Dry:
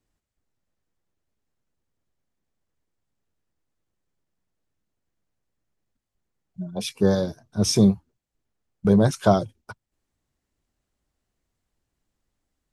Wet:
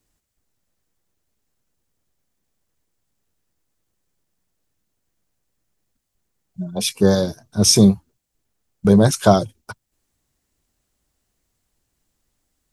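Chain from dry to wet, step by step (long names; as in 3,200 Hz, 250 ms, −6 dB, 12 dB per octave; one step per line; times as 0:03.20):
high-shelf EQ 4,800 Hz +9.5 dB
level +4.5 dB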